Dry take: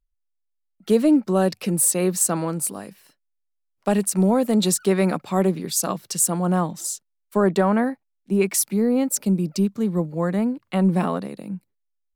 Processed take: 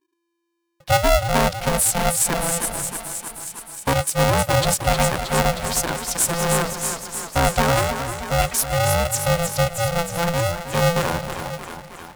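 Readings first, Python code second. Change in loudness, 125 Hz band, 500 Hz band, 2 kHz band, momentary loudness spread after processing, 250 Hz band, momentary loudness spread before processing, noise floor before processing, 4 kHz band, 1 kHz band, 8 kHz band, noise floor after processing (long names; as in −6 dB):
+1.0 dB, +3.5 dB, +1.0 dB, +10.5 dB, 10 LU, −8.0 dB, 10 LU, −75 dBFS, +8.5 dB, +7.0 dB, +2.0 dB, −75 dBFS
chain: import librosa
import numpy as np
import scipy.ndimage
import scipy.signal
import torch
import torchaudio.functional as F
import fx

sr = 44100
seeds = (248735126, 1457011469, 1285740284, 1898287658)

y = fx.echo_thinned(x, sr, ms=313, feedback_pct=73, hz=350.0, wet_db=-6.0)
y = y * np.sign(np.sin(2.0 * np.pi * 340.0 * np.arange(len(y)) / sr))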